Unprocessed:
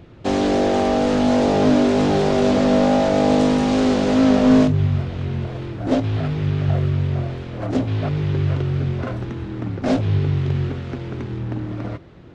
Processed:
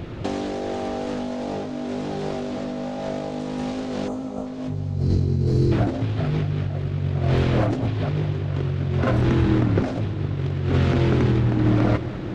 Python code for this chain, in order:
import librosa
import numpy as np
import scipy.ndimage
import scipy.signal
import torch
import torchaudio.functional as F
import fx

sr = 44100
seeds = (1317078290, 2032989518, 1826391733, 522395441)

y = fx.spec_erase(x, sr, start_s=4.08, length_s=0.38, low_hz=1400.0, high_hz=6000.0)
y = fx.over_compress(y, sr, threshold_db=-28.0, ratio=-1.0)
y = fx.spec_box(y, sr, start_s=4.73, length_s=0.99, low_hz=490.0, high_hz=3900.0, gain_db=-17)
y = fx.echo_heads(y, sr, ms=206, heads='first and third', feedback_pct=70, wet_db=-17)
y = y * librosa.db_to_amplitude(3.5)